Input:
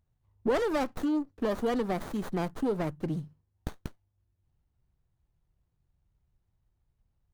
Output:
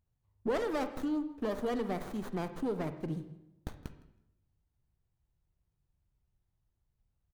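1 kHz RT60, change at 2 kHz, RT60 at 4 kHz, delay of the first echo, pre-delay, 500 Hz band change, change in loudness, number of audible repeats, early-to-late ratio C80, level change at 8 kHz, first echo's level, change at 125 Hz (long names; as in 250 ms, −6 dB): 0.85 s, −4.5 dB, 0.70 s, 161 ms, 38 ms, −4.5 dB, −4.5 dB, 1, 13.5 dB, −5.0 dB, −22.5 dB, −4.5 dB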